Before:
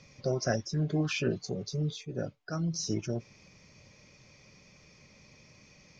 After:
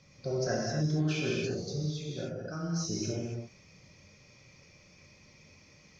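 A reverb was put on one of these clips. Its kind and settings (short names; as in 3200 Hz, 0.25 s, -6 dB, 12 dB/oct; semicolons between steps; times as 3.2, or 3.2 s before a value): non-linear reverb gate 0.3 s flat, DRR -3.5 dB; gain -5.5 dB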